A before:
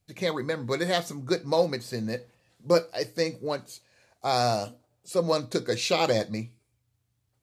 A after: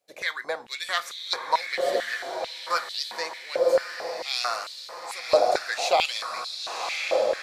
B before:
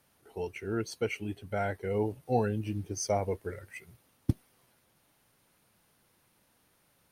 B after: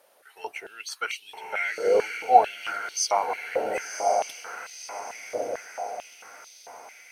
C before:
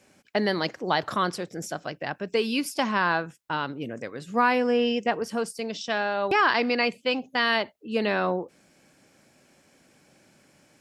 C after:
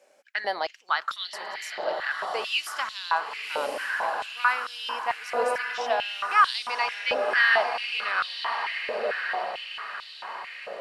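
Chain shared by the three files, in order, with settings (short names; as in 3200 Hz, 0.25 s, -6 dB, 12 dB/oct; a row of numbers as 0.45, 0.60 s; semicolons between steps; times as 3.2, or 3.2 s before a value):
octaver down 2 oct, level 0 dB; diffused feedback echo 1.052 s, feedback 55%, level -4 dB; stepped high-pass 4.5 Hz 560–3700 Hz; match loudness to -27 LUFS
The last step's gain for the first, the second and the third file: -1.0, +6.0, -5.0 dB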